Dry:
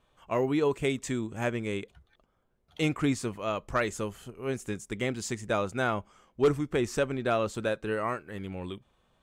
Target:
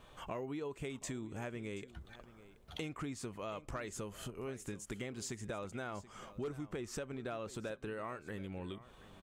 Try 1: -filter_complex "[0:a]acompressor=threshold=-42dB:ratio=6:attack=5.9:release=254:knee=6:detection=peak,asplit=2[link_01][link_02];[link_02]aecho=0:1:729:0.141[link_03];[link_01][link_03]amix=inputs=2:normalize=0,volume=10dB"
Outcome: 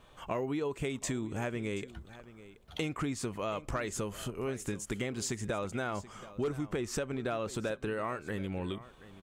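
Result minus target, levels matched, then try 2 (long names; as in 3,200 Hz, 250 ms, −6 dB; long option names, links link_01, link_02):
downward compressor: peak gain reduction −7.5 dB
-filter_complex "[0:a]acompressor=threshold=-51dB:ratio=6:attack=5.9:release=254:knee=6:detection=peak,asplit=2[link_01][link_02];[link_02]aecho=0:1:729:0.141[link_03];[link_01][link_03]amix=inputs=2:normalize=0,volume=10dB"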